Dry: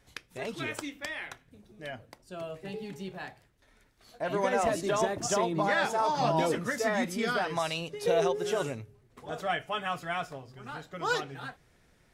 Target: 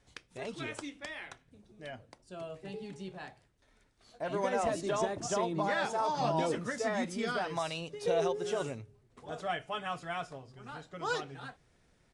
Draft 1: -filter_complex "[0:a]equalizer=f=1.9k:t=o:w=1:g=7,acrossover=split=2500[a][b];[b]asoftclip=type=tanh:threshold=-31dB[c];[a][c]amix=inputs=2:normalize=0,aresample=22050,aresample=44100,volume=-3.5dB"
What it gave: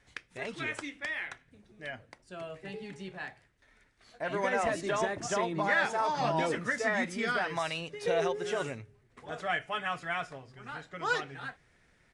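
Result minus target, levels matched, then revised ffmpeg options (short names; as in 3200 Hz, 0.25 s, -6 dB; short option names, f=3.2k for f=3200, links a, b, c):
2000 Hz band +5.5 dB
-filter_complex "[0:a]equalizer=f=1.9k:t=o:w=1:g=-2.5,acrossover=split=2500[a][b];[b]asoftclip=type=tanh:threshold=-31dB[c];[a][c]amix=inputs=2:normalize=0,aresample=22050,aresample=44100,volume=-3.5dB"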